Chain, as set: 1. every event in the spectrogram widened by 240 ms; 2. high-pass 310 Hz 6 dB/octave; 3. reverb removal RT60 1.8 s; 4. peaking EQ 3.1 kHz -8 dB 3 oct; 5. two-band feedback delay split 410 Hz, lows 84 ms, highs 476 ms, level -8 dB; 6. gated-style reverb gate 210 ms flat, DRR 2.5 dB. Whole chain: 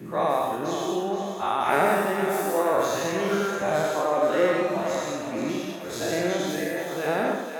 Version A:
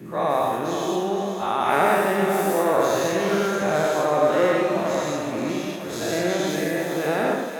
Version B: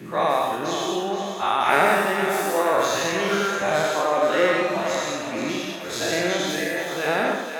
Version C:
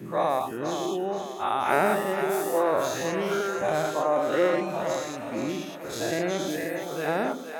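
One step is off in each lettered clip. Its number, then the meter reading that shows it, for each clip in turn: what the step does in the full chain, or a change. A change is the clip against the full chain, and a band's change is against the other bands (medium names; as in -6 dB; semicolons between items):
3, loudness change +3.0 LU; 4, 4 kHz band +5.5 dB; 6, echo-to-direct -0.5 dB to -6.5 dB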